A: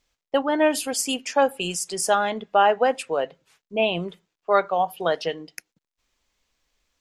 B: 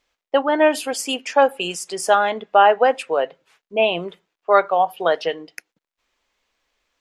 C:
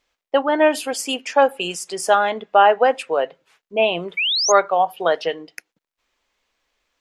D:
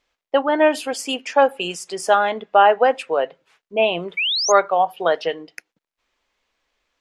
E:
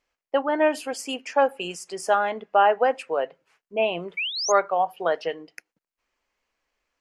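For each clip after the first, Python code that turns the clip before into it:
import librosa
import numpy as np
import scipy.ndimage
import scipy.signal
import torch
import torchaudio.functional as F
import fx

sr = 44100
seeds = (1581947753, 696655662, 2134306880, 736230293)

y1 = fx.bass_treble(x, sr, bass_db=-11, treble_db=-8)
y1 = y1 * librosa.db_to_amplitude(5.0)
y2 = fx.spec_paint(y1, sr, seeds[0], shape='rise', start_s=4.17, length_s=0.35, low_hz=2200.0, high_hz=6800.0, level_db=-20.0)
y3 = fx.high_shelf(y2, sr, hz=8800.0, db=-8.0)
y4 = fx.peak_eq(y3, sr, hz=3600.0, db=-8.5, octaves=0.31)
y4 = y4 * librosa.db_to_amplitude(-5.0)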